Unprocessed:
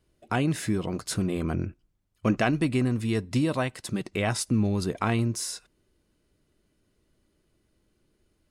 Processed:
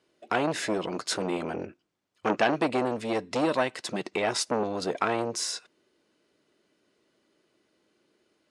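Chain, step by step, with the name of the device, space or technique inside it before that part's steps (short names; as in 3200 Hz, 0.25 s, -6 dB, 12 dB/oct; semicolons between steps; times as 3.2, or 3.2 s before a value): public-address speaker with an overloaded transformer (core saturation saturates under 1100 Hz; BPF 320–6400 Hz); gain +5.5 dB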